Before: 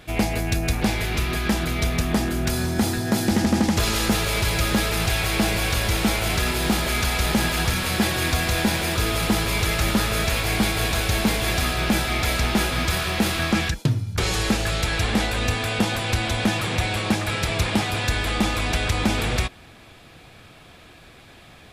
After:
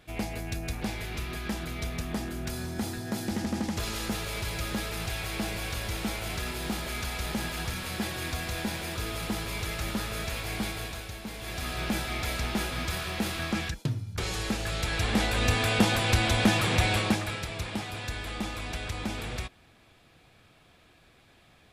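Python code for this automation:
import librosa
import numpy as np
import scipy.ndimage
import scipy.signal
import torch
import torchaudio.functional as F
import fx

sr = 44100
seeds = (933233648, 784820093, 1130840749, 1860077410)

y = fx.gain(x, sr, db=fx.line((10.7, -11.0), (11.21, -19.5), (11.77, -9.0), (14.54, -9.0), (15.61, -1.0), (16.96, -1.0), (17.49, -12.0)))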